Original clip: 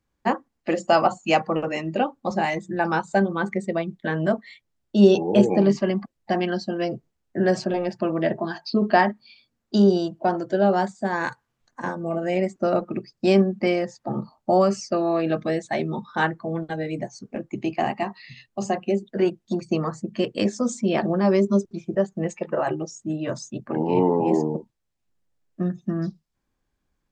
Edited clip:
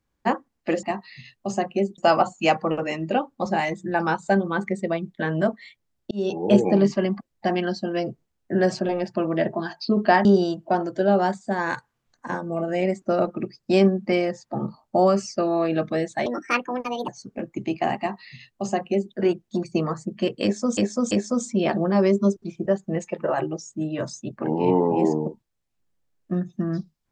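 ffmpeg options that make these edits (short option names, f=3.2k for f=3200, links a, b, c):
-filter_complex "[0:a]asplit=9[a][b][c][d][e][f][g][h][i];[a]atrim=end=0.832[j];[b]atrim=start=17.948:end=19.102[k];[c]atrim=start=0.828:end=4.96,asetpts=PTS-STARTPTS,afade=t=out:st=4.128:d=0.004:c=hsin[l];[d]atrim=start=4.96:end=9.102,asetpts=PTS-STARTPTS,afade=t=in:d=0.41[m];[e]atrim=start=9.788:end=15.804[n];[f]atrim=start=15.8:end=17.05,asetpts=PTS-STARTPTS,asetrate=67032,aresample=44100,atrim=end_sample=36266,asetpts=PTS-STARTPTS[o];[g]atrim=start=17.046:end=20.742[p];[h]atrim=start=20.398:end=20.742[q];[i]atrim=start=20.398[r];[j][k]acrossfade=d=0.004:c1=hsin:c2=hsin[s];[l][m]concat=n=2:v=0:a=1[t];[s][t]acrossfade=d=0.004:c1=hsin:c2=hsin[u];[u][n]acrossfade=d=0.004:c1=hsin:c2=hsin[v];[v][o]acrossfade=d=0.004:c1=hsin:c2=hsin[w];[w][p]acrossfade=d=0.004:c1=hsin:c2=hsin[x];[x][q]acrossfade=d=0.004:c1=hsin:c2=hsin[y];[y][r]acrossfade=d=0.004:c1=hsin:c2=hsin"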